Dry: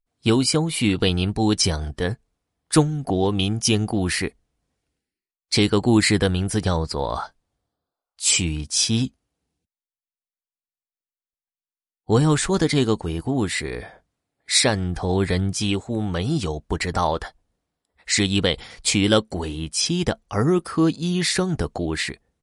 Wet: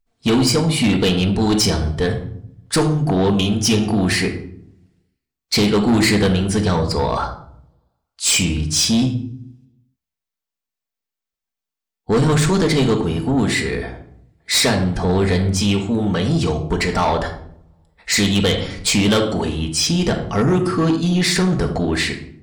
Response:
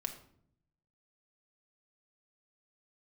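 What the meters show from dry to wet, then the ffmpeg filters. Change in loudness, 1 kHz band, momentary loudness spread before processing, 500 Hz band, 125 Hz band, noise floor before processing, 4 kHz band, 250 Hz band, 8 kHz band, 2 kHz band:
+4.0 dB, +4.5 dB, 9 LU, +4.0 dB, +4.5 dB, below −85 dBFS, +3.5 dB, +4.5 dB, +2.5 dB, +4.5 dB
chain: -filter_complex "[0:a]equalizer=frequency=10000:width=2.2:gain=-5.5[link_01];[1:a]atrim=start_sample=2205[link_02];[link_01][link_02]afir=irnorm=-1:irlink=0,asoftclip=type=tanh:threshold=-18.5dB,volume=7.5dB"

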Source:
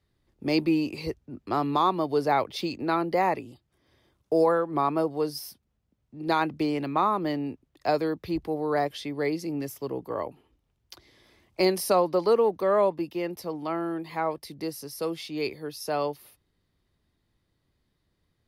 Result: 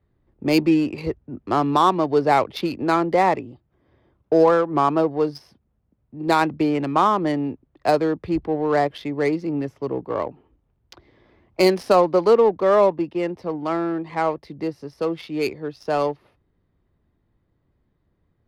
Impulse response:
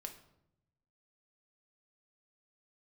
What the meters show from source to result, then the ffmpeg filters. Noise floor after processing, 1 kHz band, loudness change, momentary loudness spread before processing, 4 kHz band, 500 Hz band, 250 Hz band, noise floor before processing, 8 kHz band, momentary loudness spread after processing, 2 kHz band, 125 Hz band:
−69 dBFS, +6.5 dB, +6.5 dB, 12 LU, +3.5 dB, +6.5 dB, +6.5 dB, −75 dBFS, can't be measured, 12 LU, +6.0 dB, +6.5 dB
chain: -af "adynamicsmooth=sensitivity=4.5:basefreq=1700,volume=6.5dB"

